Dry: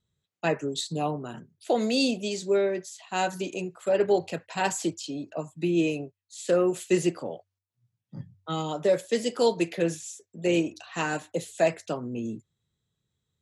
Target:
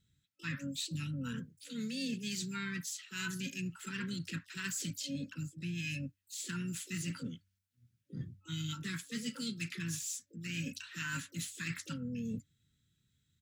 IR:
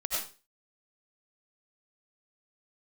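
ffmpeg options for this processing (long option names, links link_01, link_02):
-filter_complex "[0:a]afftfilt=real='re*(1-between(b*sr/4096,290,1300))':imag='im*(1-between(b*sr/4096,290,1300))':win_size=4096:overlap=0.75,areverse,acompressor=threshold=-40dB:ratio=8,areverse,asplit=4[link_01][link_02][link_03][link_04];[link_02]asetrate=29433,aresample=44100,atempo=1.49831,volume=-16dB[link_05];[link_03]asetrate=37084,aresample=44100,atempo=1.18921,volume=-17dB[link_06];[link_04]asetrate=88200,aresample=44100,atempo=0.5,volume=-14dB[link_07];[link_01][link_05][link_06][link_07]amix=inputs=4:normalize=0,volume=3.5dB"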